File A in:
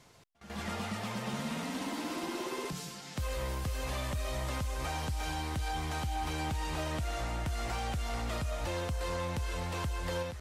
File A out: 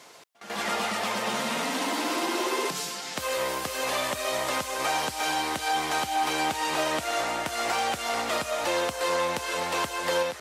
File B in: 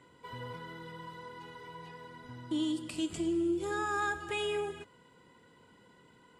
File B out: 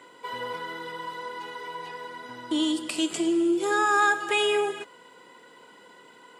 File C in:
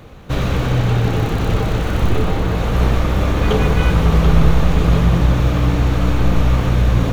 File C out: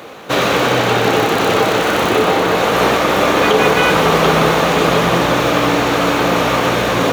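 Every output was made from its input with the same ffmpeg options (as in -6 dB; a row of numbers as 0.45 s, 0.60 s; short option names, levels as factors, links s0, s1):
-af "highpass=380,alimiter=level_in=4.22:limit=0.891:release=50:level=0:latency=1,volume=0.891"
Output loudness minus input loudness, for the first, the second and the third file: +8.5 LU, +8.5 LU, +3.5 LU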